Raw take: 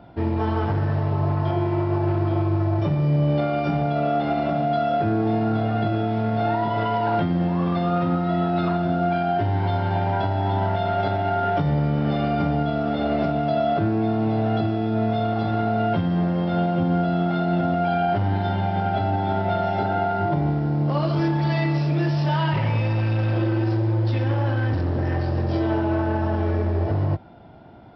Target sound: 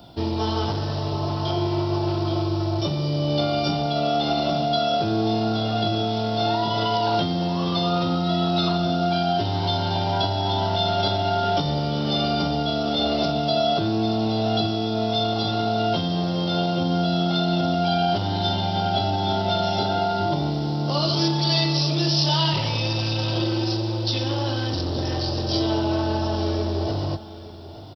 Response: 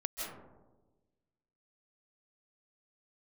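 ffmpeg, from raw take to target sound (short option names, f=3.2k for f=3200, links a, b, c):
-filter_complex "[0:a]equalizer=f=1.7k:w=3.9:g=-6,acrossover=split=240[a][b];[a]alimiter=limit=-23.5dB:level=0:latency=1[c];[b]aexciter=amount=12.3:drive=3.4:freq=3.3k[d];[c][d]amix=inputs=2:normalize=0,aecho=1:1:879:0.168"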